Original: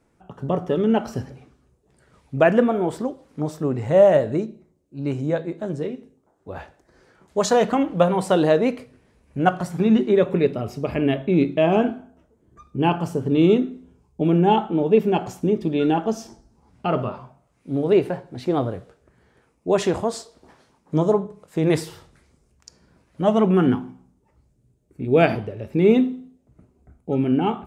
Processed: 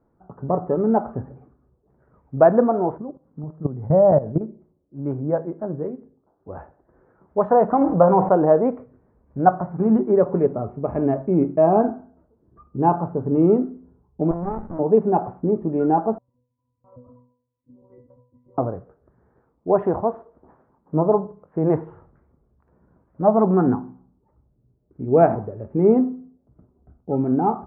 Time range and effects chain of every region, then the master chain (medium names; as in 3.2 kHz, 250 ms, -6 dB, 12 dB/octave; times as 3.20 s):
2.98–4.41 s: low-pass 1.7 kHz 6 dB/octave + peaking EQ 150 Hz +10.5 dB 1.1 oct + level held to a coarse grid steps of 15 dB
7.81–8.29 s: doubling 25 ms -14 dB + level flattener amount 50%
14.31–14.79 s: hum notches 60/120/180 Hz + compression 2:1, threshold -24 dBFS + sliding maximum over 65 samples
16.18–18.58 s: monotone LPC vocoder at 8 kHz 190 Hz + pitch-class resonator B, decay 0.46 s
whole clip: inverse Chebyshev low-pass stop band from 4.3 kHz, stop band 60 dB; dynamic bell 790 Hz, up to +6 dB, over -33 dBFS, Q 1.5; trim -1 dB